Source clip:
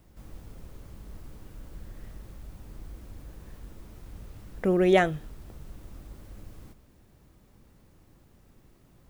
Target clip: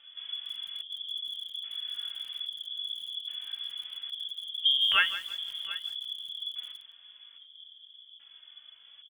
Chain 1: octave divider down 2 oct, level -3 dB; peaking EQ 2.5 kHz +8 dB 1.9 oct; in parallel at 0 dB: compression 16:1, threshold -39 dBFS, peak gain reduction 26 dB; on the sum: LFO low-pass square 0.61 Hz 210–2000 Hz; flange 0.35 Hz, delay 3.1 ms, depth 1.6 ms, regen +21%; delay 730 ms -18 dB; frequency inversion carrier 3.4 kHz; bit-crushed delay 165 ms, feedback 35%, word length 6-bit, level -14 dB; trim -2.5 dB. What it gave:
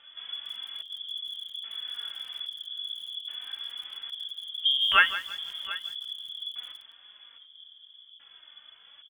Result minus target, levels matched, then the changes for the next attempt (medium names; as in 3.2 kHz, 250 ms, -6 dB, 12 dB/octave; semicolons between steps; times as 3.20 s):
2 kHz band +3.5 dB
remove: peaking EQ 2.5 kHz +8 dB 1.9 oct